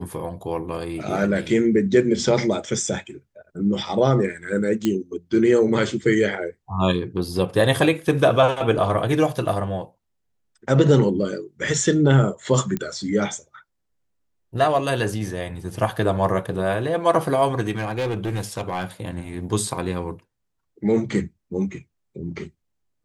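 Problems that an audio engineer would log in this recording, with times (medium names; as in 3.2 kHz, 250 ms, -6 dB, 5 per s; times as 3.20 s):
4.85 s: pop -9 dBFS
12.77 s: pop -13 dBFS
17.70–18.85 s: clipped -20.5 dBFS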